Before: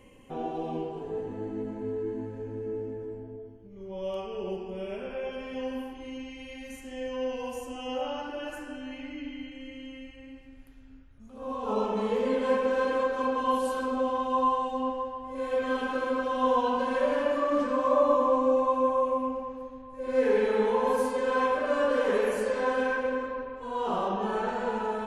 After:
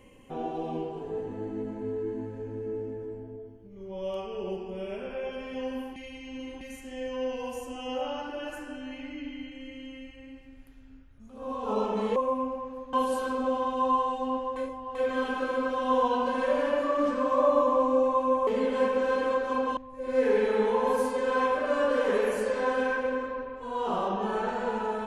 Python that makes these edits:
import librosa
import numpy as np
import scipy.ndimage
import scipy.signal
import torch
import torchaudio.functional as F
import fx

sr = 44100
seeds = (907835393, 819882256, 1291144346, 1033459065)

y = fx.edit(x, sr, fx.reverse_span(start_s=5.96, length_s=0.65),
    fx.swap(start_s=12.16, length_s=1.3, other_s=19.0, other_length_s=0.77),
    fx.reverse_span(start_s=15.09, length_s=0.39), tone=tone)